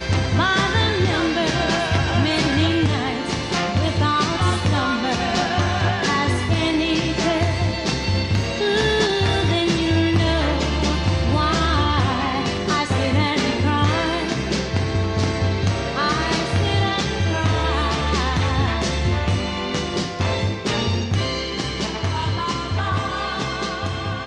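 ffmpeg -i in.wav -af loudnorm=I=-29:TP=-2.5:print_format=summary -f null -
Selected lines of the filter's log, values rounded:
Input Integrated:    -20.8 LUFS
Input True Peak:      -6.4 dBTP
Input LRA:             4.9 LU
Input Threshold:     -30.8 LUFS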